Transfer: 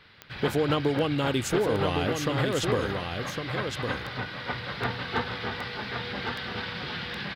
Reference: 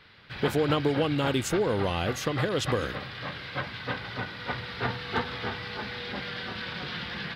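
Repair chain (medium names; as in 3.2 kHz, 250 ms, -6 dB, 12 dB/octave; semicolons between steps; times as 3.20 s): clip repair -15 dBFS; de-click; inverse comb 1108 ms -5.5 dB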